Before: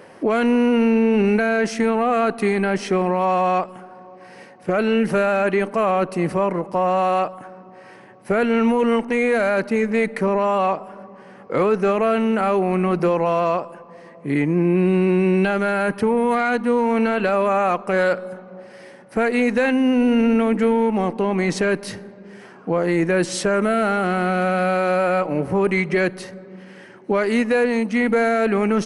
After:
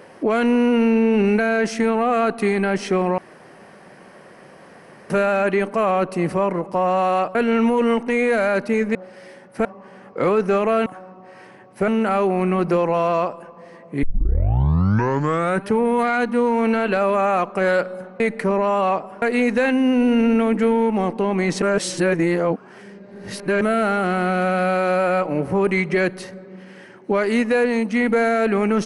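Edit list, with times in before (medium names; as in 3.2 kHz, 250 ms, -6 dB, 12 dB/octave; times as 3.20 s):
3.18–5.10 s: room tone
7.35–8.37 s: move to 12.20 s
9.97–10.99 s: swap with 18.52–19.22 s
14.35 s: tape start 1.63 s
21.62–23.61 s: reverse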